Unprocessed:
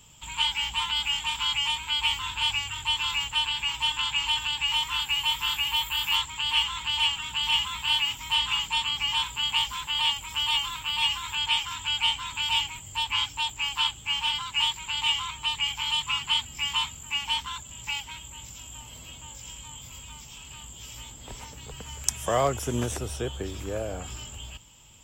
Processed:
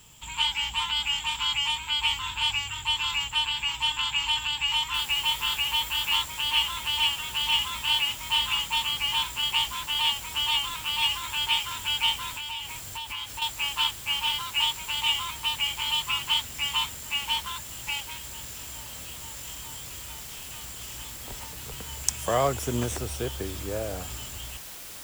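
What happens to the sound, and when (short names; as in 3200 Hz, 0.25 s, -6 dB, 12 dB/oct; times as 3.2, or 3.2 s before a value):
4.94 noise floor step -60 dB -42 dB
12.33–13.42 compressor 4:1, threshold -32 dBFS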